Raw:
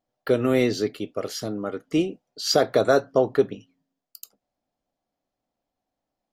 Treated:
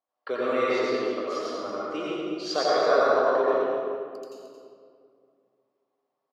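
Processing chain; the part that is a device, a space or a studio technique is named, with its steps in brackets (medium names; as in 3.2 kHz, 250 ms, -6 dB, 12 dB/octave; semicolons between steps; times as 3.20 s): station announcement (band-pass 420–4900 Hz; peaking EQ 1.1 kHz +11.5 dB 0.4 oct; loudspeakers at several distances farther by 29 m -10 dB, 76 m -10 dB; reverberation RT60 2.3 s, pre-delay 81 ms, DRR -6.5 dB); trim -8 dB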